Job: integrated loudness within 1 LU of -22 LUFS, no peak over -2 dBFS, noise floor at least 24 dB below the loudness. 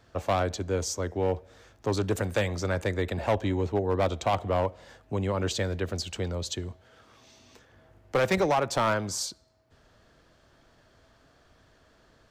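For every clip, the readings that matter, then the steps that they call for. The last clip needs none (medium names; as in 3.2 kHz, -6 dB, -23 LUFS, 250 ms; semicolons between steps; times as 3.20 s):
clipped samples 0.8%; clipping level -18.5 dBFS; loudness -29.0 LUFS; peak level -18.5 dBFS; loudness target -22.0 LUFS
-> clip repair -18.5 dBFS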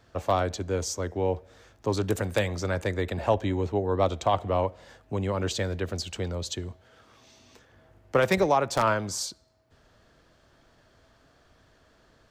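clipped samples 0.0%; loudness -28.0 LUFS; peak level -9.5 dBFS; loudness target -22.0 LUFS
-> trim +6 dB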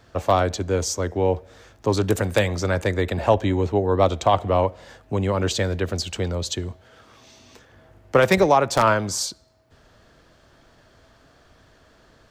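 loudness -22.0 LUFS; peak level -3.5 dBFS; noise floor -56 dBFS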